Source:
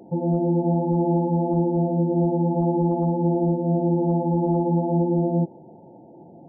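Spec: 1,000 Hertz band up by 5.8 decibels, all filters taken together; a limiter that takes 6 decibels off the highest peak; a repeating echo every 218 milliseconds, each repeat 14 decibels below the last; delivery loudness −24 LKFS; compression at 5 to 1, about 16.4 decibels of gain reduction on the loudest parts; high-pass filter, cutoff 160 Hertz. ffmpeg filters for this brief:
ffmpeg -i in.wav -af "highpass=160,equalizer=frequency=1000:width_type=o:gain=7.5,acompressor=threshold=-37dB:ratio=5,alimiter=level_in=9dB:limit=-24dB:level=0:latency=1,volume=-9dB,aecho=1:1:218|436:0.2|0.0399,volume=17dB" out.wav

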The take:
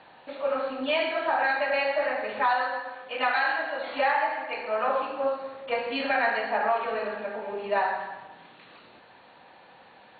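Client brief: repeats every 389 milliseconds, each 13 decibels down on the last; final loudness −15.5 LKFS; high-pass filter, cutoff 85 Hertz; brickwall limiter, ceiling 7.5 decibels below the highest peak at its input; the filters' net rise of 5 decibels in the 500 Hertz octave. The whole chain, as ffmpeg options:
ffmpeg -i in.wav -af "highpass=85,equalizer=frequency=500:width_type=o:gain=6,alimiter=limit=-18.5dB:level=0:latency=1,aecho=1:1:389|778|1167:0.224|0.0493|0.0108,volume=12dB" out.wav

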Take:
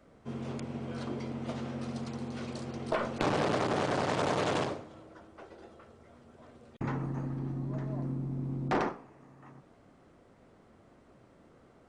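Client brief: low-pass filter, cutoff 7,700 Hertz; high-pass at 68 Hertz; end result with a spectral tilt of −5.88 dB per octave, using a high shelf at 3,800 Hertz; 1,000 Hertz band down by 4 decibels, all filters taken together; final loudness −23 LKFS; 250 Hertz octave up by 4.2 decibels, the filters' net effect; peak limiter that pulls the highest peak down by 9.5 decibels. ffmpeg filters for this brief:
ffmpeg -i in.wav -af "highpass=68,lowpass=7700,equalizer=frequency=250:width_type=o:gain=5.5,equalizer=frequency=1000:width_type=o:gain=-6.5,highshelf=frequency=3800:gain=8.5,volume=11.5dB,alimiter=limit=-11.5dB:level=0:latency=1" out.wav

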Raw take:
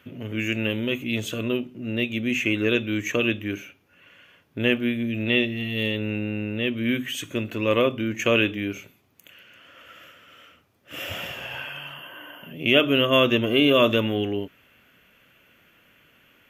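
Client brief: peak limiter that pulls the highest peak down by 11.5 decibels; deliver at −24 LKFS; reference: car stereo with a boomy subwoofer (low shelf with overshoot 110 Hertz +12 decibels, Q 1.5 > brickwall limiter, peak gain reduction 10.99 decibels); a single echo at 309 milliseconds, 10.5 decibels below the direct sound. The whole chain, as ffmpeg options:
ffmpeg -i in.wav -af "alimiter=limit=-15dB:level=0:latency=1,lowshelf=frequency=110:width_type=q:width=1.5:gain=12,aecho=1:1:309:0.299,volume=10dB,alimiter=limit=-15.5dB:level=0:latency=1" out.wav

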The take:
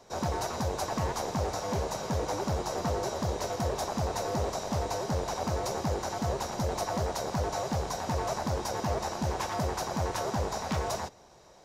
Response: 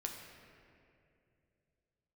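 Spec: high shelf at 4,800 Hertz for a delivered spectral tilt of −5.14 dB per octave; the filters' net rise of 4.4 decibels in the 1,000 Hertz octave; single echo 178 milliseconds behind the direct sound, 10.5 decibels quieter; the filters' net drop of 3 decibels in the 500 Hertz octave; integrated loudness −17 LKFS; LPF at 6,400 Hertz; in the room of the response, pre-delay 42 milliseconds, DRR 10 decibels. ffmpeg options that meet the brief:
-filter_complex "[0:a]lowpass=6400,equalizer=frequency=500:width_type=o:gain=-7,equalizer=frequency=1000:width_type=o:gain=8.5,highshelf=frequency=4800:gain=-8,aecho=1:1:178:0.299,asplit=2[link_01][link_02];[1:a]atrim=start_sample=2205,adelay=42[link_03];[link_02][link_03]afir=irnorm=-1:irlink=0,volume=-9.5dB[link_04];[link_01][link_04]amix=inputs=2:normalize=0,volume=13.5dB"

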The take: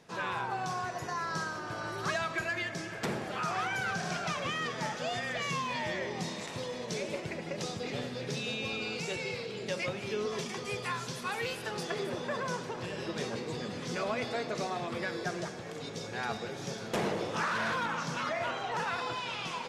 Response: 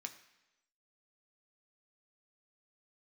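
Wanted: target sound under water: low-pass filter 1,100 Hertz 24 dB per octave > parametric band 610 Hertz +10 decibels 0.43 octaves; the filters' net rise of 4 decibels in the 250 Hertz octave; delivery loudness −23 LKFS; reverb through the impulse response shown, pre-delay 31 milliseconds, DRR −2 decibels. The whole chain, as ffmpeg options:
-filter_complex "[0:a]equalizer=frequency=250:width_type=o:gain=5,asplit=2[link_01][link_02];[1:a]atrim=start_sample=2205,adelay=31[link_03];[link_02][link_03]afir=irnorm=-1:irlink=0,volume=5dB[link_04];[link_01][link_04]amix=inputs=2:normalize=0,lowpass=frequency=1100:width=0.5412,lowpass=frequency=1100:width=1.3066,equalizer=frequency=610:width_type=o:width=0.43:gain=10,volume=7.5dB"

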